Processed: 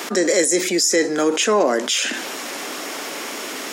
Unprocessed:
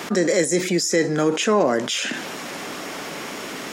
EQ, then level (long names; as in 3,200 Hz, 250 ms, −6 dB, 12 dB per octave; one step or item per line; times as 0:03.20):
high-pass filter 240 Hz 24 dB per octave
high-shelf EQ 4,600 Hz +6.5 dB
+1.5 dB